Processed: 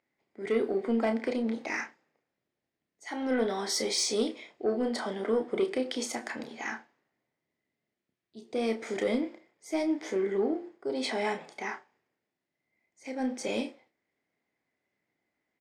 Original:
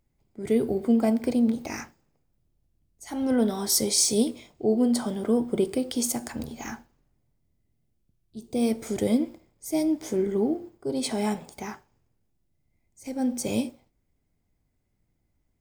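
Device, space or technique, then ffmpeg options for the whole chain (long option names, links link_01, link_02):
intercom: -filter_complex "[0:a]highpass=360,lowpass=4500,equalizer=frequency=1900:width_type=o:width=0.51:gain=8.5,asoftclip=type=tanh:threshold=-19dB,asplit=2[link_01][link_02];[link_02]adelay=31,volume=-8dB[link_03];[link_01][link_03]amix=inputs=2:normalize=0"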